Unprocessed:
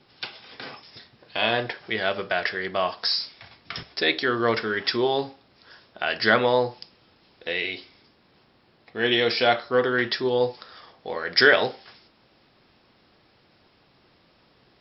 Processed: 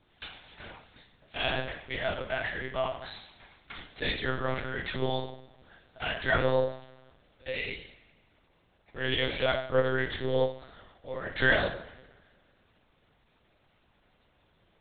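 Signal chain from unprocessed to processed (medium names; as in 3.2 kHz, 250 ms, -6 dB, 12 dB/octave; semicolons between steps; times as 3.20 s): two-slope reverb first 0.58 s, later 1.8 s, from -18 dB, DRR 1.5 dB; monotone LPC vocoder at 8 kHz 130 Hz; trim -9 dB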